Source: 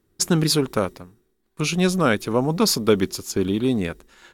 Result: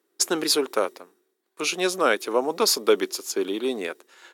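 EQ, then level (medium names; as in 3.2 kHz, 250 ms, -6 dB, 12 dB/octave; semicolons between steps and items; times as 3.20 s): high-pass 340 Hz 24 dB/octave; 0.0 dB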